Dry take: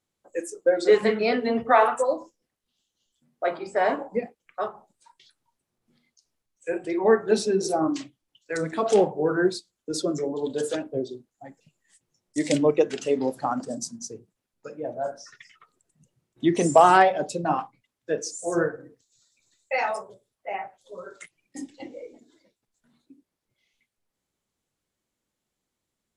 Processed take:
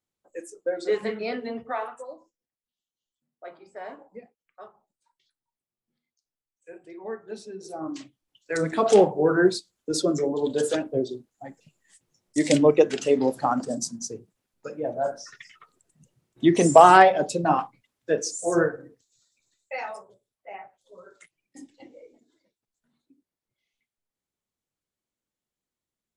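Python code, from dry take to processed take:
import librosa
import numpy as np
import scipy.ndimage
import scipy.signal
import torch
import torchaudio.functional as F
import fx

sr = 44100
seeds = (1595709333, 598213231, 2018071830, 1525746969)

y = fx.gain(x, sr, db=fx.line((1.42, -7.0), (1.98, -16.0), (7.6, -16.0), (7.98, -5.5), (8.65, 3.0), (18.51, 3.0), (19.91, -8.5)))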